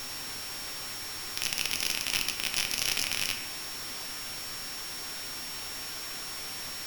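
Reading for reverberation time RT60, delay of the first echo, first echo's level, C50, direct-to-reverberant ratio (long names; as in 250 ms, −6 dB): 1.0 s, no echo audible, no echo audible, 7.5 dB, 3.5 dB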